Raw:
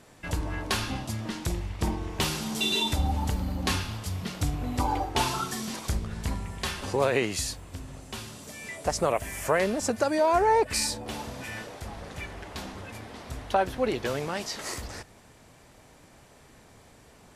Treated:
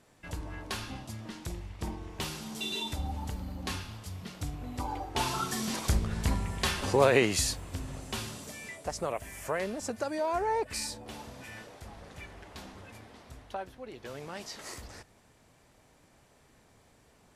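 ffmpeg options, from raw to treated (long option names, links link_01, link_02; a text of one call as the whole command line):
ffmpeg -i in.wav -af "volume=12.5dB,afade=type=in:start_time=5.02:duration=0.77:silence=0.298538,afade=type=out:start_time=8.26:duration=0.58:silence=0.316228,afade=type=out:start_time=12.93:duration=0.93:silence=0.298538,afade=type=in:start_time=13.86:duration=0.6:silence=0.298538" out.wav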